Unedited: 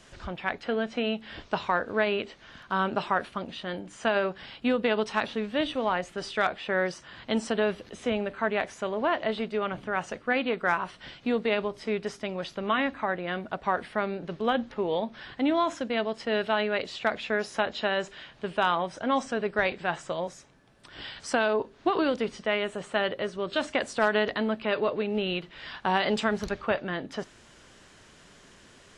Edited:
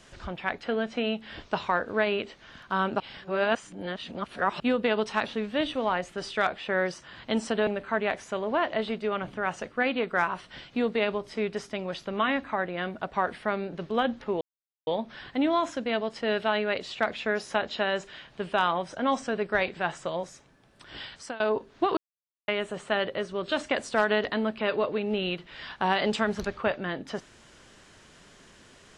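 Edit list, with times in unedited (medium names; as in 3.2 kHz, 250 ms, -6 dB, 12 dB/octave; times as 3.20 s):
3.00–4.60 s: reverse
7.67–8.17 s: delete
14.91 s: insert silence 0.46 s
21.08–21.44 s: fade out, to -22 dB
22.01–22.52 s: mute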